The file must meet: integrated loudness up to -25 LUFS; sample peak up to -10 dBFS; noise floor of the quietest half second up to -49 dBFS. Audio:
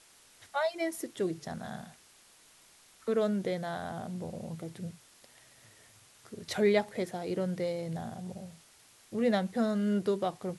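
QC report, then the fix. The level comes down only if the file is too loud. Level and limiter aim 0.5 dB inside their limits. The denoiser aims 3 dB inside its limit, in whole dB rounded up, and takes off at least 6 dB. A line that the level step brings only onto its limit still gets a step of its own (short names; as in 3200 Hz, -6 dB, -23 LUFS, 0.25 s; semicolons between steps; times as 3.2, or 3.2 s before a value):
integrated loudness -33.0 LUFS: OK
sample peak -14.5 dBFS: OK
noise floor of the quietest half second -60 dBFS: OK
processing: none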